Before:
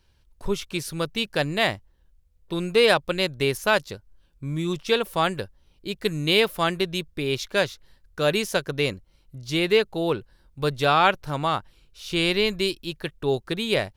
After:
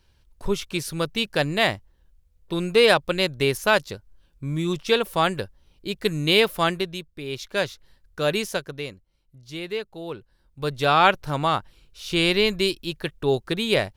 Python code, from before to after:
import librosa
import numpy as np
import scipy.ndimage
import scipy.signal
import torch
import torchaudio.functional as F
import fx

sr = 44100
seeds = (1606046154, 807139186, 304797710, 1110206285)

y = fx.gain(x, sr, db=fx.line((6.68, 1.5), (7.11, -8.5), (7.67, -1.0), (8.46, -1.0), (8.9, -10.0), (10.05, -10.0), (11.03, 2.0)))